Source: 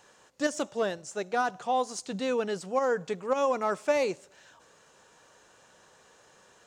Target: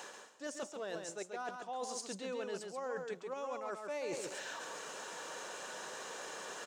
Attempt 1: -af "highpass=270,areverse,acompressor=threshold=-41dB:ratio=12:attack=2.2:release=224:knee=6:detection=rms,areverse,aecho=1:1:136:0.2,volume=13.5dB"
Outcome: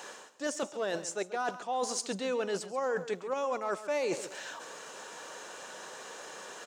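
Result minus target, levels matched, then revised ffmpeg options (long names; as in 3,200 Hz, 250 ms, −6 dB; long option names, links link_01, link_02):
downward compressor: peak gain reduction −9 dB; echo-to-direct −9 dB
-af "highpass=270,areverse,acompressor=threshold=-51dB:ratio=12:attack=2.2:release=224:knee=6:detection=rms,areverse,aecho=1:1:136:0.562,volume=13.5dB"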